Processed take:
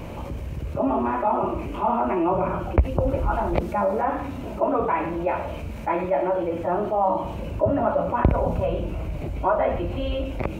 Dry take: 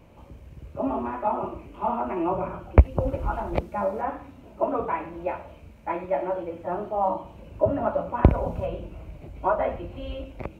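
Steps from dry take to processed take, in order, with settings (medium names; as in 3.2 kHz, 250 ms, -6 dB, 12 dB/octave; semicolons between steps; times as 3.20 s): level flattener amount 50%; trim -5 dB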